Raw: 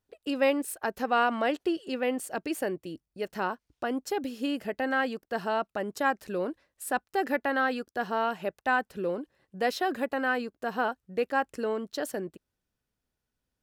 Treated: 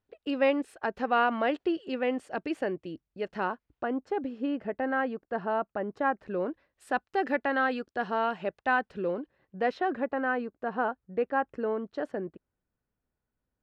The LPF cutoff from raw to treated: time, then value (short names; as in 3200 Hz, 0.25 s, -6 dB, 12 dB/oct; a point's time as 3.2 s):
3.41 s 3200 Hz
4 s 1600 Hz
6.17 s 1600 Hz
6.83 s 3700 Hz
8.89 s 3700 Hz
10.05 s 1700 Hz